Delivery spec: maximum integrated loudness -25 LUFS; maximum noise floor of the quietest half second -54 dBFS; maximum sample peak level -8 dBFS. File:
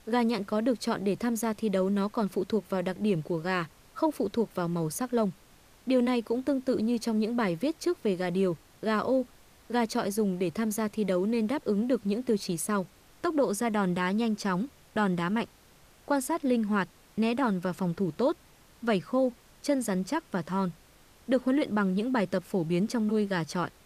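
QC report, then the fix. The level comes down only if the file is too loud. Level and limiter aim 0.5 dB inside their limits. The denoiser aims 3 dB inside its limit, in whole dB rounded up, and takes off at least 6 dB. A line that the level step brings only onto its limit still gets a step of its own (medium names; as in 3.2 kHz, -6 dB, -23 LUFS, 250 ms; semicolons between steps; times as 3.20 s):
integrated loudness -29.5 LUFS: pass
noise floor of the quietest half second -58 dBFS: pass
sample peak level -14.5 dBFS: pass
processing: none needed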